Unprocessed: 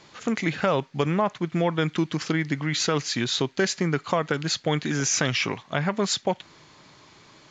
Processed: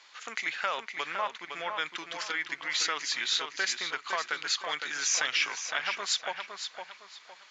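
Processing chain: high-pass 1.3 kHz 12 dB/octave; treble shelf 6.1 kHz -6.5 dB; on a send: filtered feedback delay 510 ms, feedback 33%, low-pass 4.9 kHz, level -6 dB

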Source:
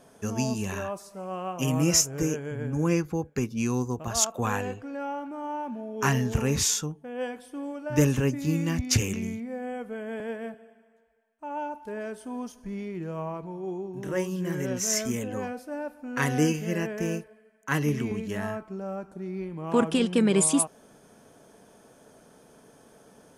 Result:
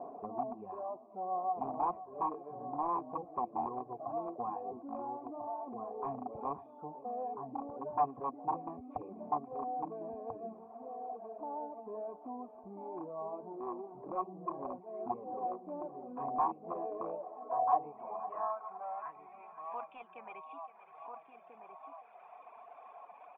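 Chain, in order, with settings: jump at every zero crossing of -34.5 dBFS; echo from a far wall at 230 m, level -6 dB; reverb removal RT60 1.5 s; in parallel at +2 dB: compression 6:1, threshold -34 dBFS, peak gain reduction 16.5 dB; on the sum: band-pass sweep 320 Hz -> 2.5 kHz, 16.59–19.40 s; on a send: thinning echo 517 ms, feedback 48%, high-pass 430 Hz, level -13.5 dB; on the sum: wavefolder -25.5 dBFS; cascade formant filter a; trim +12 dB

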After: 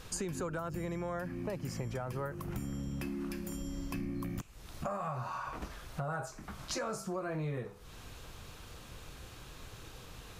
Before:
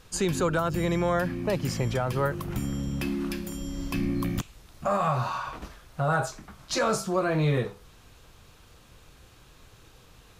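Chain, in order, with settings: dynamic bell 3.6 kHz, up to -8 dB, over -54 dBFS, Q 1.9; compression 4:1, threshold -42 dBFS, peak gain reduction 17 dB; trim +4 dB

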